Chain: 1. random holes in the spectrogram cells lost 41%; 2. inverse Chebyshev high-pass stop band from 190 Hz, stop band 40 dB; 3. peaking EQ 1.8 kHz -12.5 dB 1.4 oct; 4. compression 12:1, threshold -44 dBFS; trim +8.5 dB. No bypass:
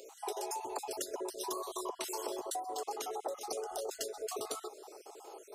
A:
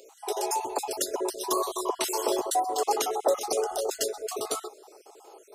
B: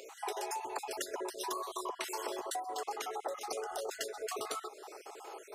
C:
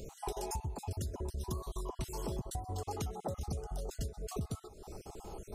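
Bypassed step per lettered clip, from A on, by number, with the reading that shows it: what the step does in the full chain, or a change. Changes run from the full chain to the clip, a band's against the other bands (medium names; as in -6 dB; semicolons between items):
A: 4, mean gain reduction 8.0 dB; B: 3, 2 kHz band +8.5 dB; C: 2, 250 Hz band +9.0 dB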